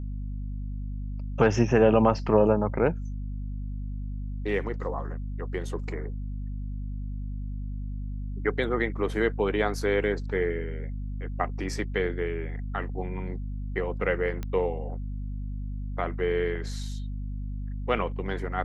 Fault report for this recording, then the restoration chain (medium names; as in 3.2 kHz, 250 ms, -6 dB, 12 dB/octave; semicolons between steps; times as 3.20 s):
hum 50 Hz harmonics 5 -33 dBFS
14.43 s: pop -20 dBFS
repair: de-click; de-hum 50 Hz, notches 5